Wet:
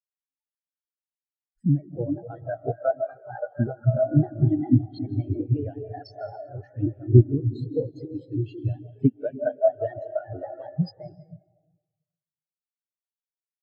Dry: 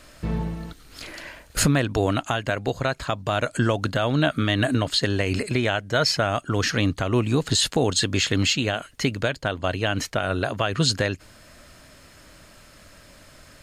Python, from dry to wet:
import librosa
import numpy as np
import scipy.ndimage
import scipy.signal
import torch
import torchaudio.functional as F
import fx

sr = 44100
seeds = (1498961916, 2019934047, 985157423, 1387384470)

y = fx.pitch_trill(x, sr, semitones=3.0, every_ms=94)
y = fx.noise_reduce_blind(y, sr, reduce_db=24)
y = fx.rider(y, sr, range_db=4, speed_s=0.5)
y = fx.rev_freeverb(y, sr, rt60_s=4.5, hf_ratio=0.6, predelay_ms=110, drr_db=-1.0)
y = fx.spectral_expand(y, sr, expansion=4.0)
y = y * librosa.db_to_amplitude(2.5)